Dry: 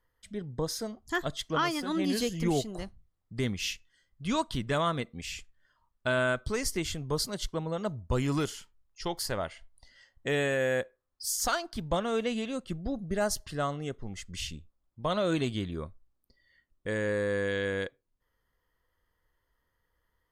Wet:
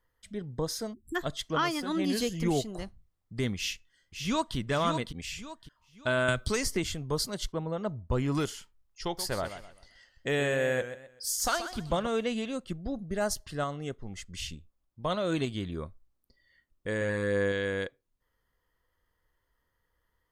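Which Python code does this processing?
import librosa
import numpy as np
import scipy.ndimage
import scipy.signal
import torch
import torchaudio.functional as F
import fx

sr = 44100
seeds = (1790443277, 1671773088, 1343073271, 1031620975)

y = fx.spec_erase(x, sr, start_s=0.93, length_s=0.23, low_hz=390.0, high_hz=7400.0)
y = fx.echo_throw(y, sr, start_s=3.56, length_s=1.0, ms=560, feedback_pct=35, wet_db=-6.0)
y = fx.band_squash(y, sr, depth_pct=100, at=(6.28, 6.84))
y = fx.high_shelf(y, sr, hz=3700.0, db=-11.5, at=(7.52, 8.35))
y = fx.echo_warbled(y, sr, ms=128, feedback_pct=32, rate_hz=2.8, cents=109, wet_db=-11, at=(9.04, 12.07))
y = fx.tremolo_shape(y, sr, shape='saw_up', hz=3.3, depth_pct=30, at=(12.57, 15.65), fade=0.02)
y = fx.doubler(y, sr, ms=30.0, db=-7.0, at=(16.98, 17.52))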